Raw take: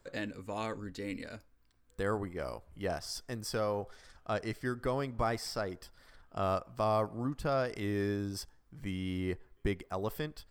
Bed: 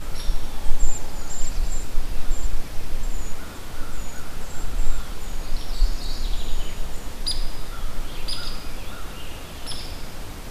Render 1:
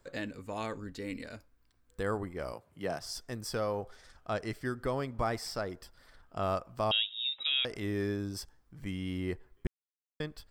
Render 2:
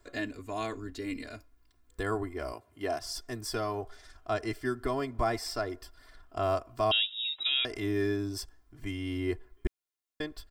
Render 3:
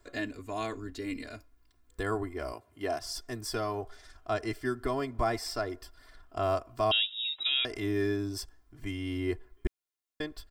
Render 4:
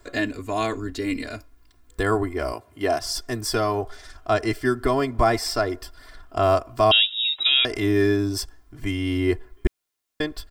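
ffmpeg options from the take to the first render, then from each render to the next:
ffmpeg -i in.wav -filter_complex "[0:a]asettb=1/sr,asplit=3[link_01][link_02][link_03];[link_01]atrim=end=2.534[link_04];[link_02]atrim=start=2.53:end=3.02,asetpts=PTS-STARTPTS,afade=type=in:duration=0.004:curve=qsin,afade=type=out:start_time=0.486:duration=0.004:curve=qsin,highpass=frequency=110:width=0.5412,highpass=frequency=110:width=1.3066[link_05];[link_03]atrim=start=3.016[link_06];[link_04][link_05]acrossfade=duration=0.004:curve1=hsin:curve2=qsin[link_07];[link_07][link_06]acrossfade=duration=0.004:curve1=qsin:curve2=hsin,asettb=1/sr,asplit=3[link_08][link_09][link_10];[link_08]atrim=end=6.914[link_11];[link_09]atrim=start=6.91:end=7.65,asetpts=PTS-STARTPTS,afade=type=in:duration=0.004:curve=qsin,afade=type=out:start_time=0.736:duration=0.004:curve=qsin,lowpass=frequency=3300:width_type=q:width=0.5098,lowpass=frequency=3300:width_type=q:width=0.6013,lowpass=frequency=3300:width_type=q:width=0.9,lowpass=frequency=3300:width_type=q:width=2.563,afreqshift=-3900[link_12];[link_10]atrim=start=7.646[link_13];[link_11][link_12]acrossfade=duration=0.004:curve1=hsin:curve2=qsin[link_14];[link_14][link_13]acrossfade=duration=0.004:curve1=qsin:curve2=hsin,asplit=3[link_15][link_16][link_17];[link_15]atrim=end=9.67,asetpts=PTS-STARTPTS,afade=type=out:start_time=9.666:duration=0.004:curve=hsin[link_18];[link_16]atrim=start=9.67:end=10.2,asetpts=PTS-STARTPTS,volume=0[link_19];[link_17]atrim=start=10.2,asetpts=PTS-STARTPTS,afade=type=in:duration=0.004:curve=hsin[link_20];[link_18][link_19][link_20]concat=n=3:v=0:a=1" out.wav
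ffmpeg -i in.wav -af "aecho=1:1:2.9:0.92" out.wav
ffmpeg -i in.wav -af anull out.wav
ffmpeg -i in.wav -af "volume=10dB" out.wav

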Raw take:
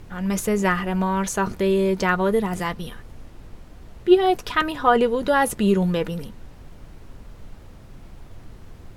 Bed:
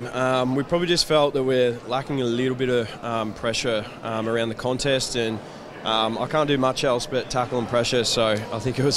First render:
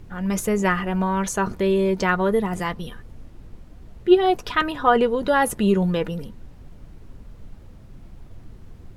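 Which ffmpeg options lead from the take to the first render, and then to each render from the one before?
ffmpeg -i in.wav -af "afftdn=noise_reduction=6:noise_floor=-44" out.wav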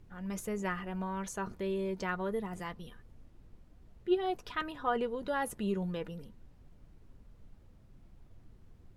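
ffmpeg -i in.wav -af "volume=-14.5dB" out.wav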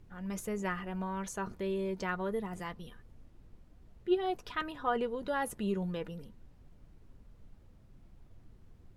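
ffmpeg -i in.wav -af anull out.wav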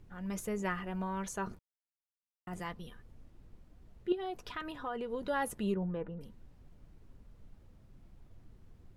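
ffmpeg -i in.wav -filter_complex "[0:a]asettb=1/sr,asplit=3[link_01][link_02][link_03];[link_01]atrim=end=4.124[link_04];[link_02]atrim=start=4.12:end=5.1,asetpts=PTS-STARTPTS,afade=type=in:duration=0.004:curve=qsin,afade=type=out:start_time=0.976:duration=0.004:curve=qsin,acompressor=threshold=-37dB:ratio=2.5:attack=3.2:release=140:knee=1:detection=peak[link_05];[link_03]atrim=start=5.096[link_06];[link_04][link_05]acrossfade=duration=0.004:curve1=hsin:curve2=qsin[link_07];[link_07][link_06]acrossfade=duration=0.004:curve1=qsin:curve2=hsin,asettb=1/sr,asplit=3[link_08][link_09][link_10];[link_08]atrim=end=5.744[link_11];[link_09]atrim=start=5.74:end=6.21,asetpts=PTS-STARTPTS,afade=type=in:duration=0.004:curve=qsin,afade=type=out:start_time=0.466:duration=0.004:curve=qsin,lowpass=1400[link_12];[link_10]atrim=start=6.206[link_13];[link_11][link_12]acrossfade=duration=0.004:curve1=hsin:curve2=qsin[link_14];[link_14][link_13]acrossfade=duration=0.004:curve1=qsin:curve2=hsin,asplit=3[link_15][link_16][link_17];[link_15]atrim=end=1.59,asetpts=PTS-STARTPTS,afade=type=out:start_time=1.586:duration=0.004:curve=hsin[link_18];[link_16]atrim=start=1.59:end=2.47,asetpts=PTS-STARTPTS,volume=0[link_19];[link_17]atrim=start=2.47,asetpts=PTS-STARTPTS,afade=type=in:duration=0.004:curve=hsin[link_20];[link_18][link_19][link_20]concat=n=3:v=0:a=1" out.wav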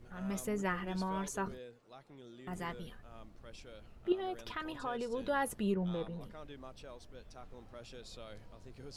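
ffmpeg -i in.wav -i bed.wav -filter_complex "[1:a]volume=-30dB[link_01];[0:a][link_01]amix=inputs=2:normalize=0" out.wav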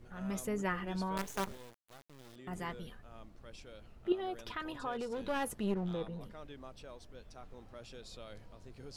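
ffmpeg -i in.wav -filter_complex "[0:a]asettb=1/sr,asplit=3[link_01][link_02][link_03];[link_01]atrim=end=1.174[link_04];[link_02]atrim=start=1.17:end=2.36,asetpts=PTS-STARTPTS,afade=type=in:duration=0.004:curve=qsin,afade=type=out:start_time=1.186:duration=0.004:curve=qsin,acrusher=bits=6:dc=4:mix=0:aa=0.000001[link_05];[link_03]atrim=start=2.356[link_06];[link_04][link_05]acrossfade=duration=0.004:curve1=hsin:curve2=qsin[link_07];[link_07][link_06]acrossfade=duration=0.004:curve1=qsin:curve2=hsin,asplit=3[link_08][link_09][link_10];[link_08]afade=type=out:start_time=4.91:duration=0.02[link_11];[link_09]aeval=exprs='clip(val(0),-1,0.0141)':channel_layout=same,afade=type=in:start_time=4.91:duration=0.02,afade=type=out:start_time=5.93:duration=0.02[link_12];[link_10]afade=type=in:start_time=5.93:duration=0.02[link_13];[link_11][link_12][link_13]amix=inputs=3:normalize=0" out.wav

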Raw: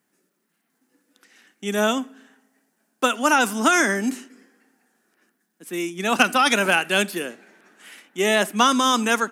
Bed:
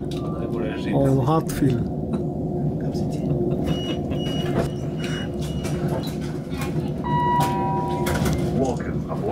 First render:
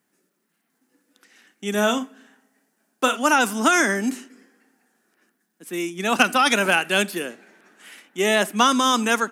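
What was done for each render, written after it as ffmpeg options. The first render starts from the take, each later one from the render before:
ffmpeg -i in.wav -filter_complex "[0:a]asettb=1/sr,asplit=3[link_01][link_02][link_03];[link_01]atrim=end=1.704[link_04];[link_02]atrim=start=1.7:end=3.17,asetpts=PTS-STARTPTS,afade=type=in:duration=0.004:curve=qsin,afade=type=out:start_time=1.466:duration=0.004:curve=qsin,asplit=2[link_05][link_06];[link_06]adelay=39,volume=-10dB[link_07];[link_05][link_07]amix=inputs=2:normalize=0,atrim=end_sample=64827[link_08];[link_03]atrim=start=3.166[link_09];[link_04][link_08]acrossfade=duration=0.004:curve1=hsin:curve2=qsin[link_10];[link_10][link_09]acrossfade=duration=0.004:curve1=qsin:curve2=hsin" out.wav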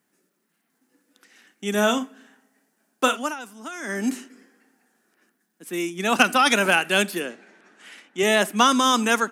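ffmpeg -i in.wav -filter_complex "[0:a]asettb=1/sr,asplit=3[link_01][link_02][link_03];[link_01]atrim=end=7.204[link_04];[link_02]atrim=start=7.2:end=8.23,asetpts=PTS-STARTPTS,afade=type=in:duration=0.004:curve=qsin,afade=type=out:start_time=1.026:duration=0.004:curve=qsin,highpass=110,lowpass=7800[link_05];[link_03]atrim=start=8.226[link_06];[link_04][link_05]acrossfade=duration=0.004:curve1=hsin:curve2=qsin[link_07];[link_07][link_06]acrossfade=duration=0.004:curve1=qsin:curve2=hsin,asplit=3[link_08][link_09][link_10];[link_08]atrim=end=3.35,asetpts=PTS-STARTPTS,afade=type=out:start_time=3.09:duration=0.26:silence=0.125893[link_11];[link_09]atrim=start=3.35:end=3.81,asetpts=PTS-STARTPTS,volume=-18dB[link_12];[link_10]atrim=start=3.81,asetpts=PTS-STARTPTS,afade=type=in:duration=0.26:silence=0.125893[link_13];[link_11][link_12][link_13]concat=n=3:v=0:a=1" out.wav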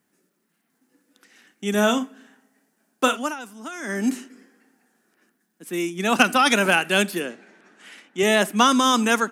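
ffmpeg -i in.wav -af "lowshelf=frequency=220:gain=5" out.wav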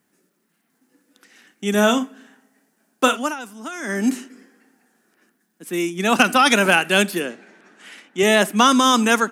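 ffmpeg -i in.wav -af "volume=3dB,alimiter=limit=-2dB:level=0:latency=1" out.wav

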